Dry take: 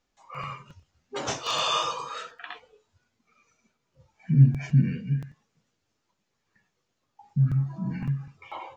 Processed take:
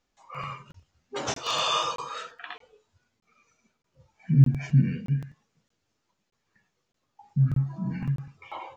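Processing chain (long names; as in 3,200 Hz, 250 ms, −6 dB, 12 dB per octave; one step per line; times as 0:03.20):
regular buffer underruns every 0.62 s, samples 1,024, zero, from 0:00.72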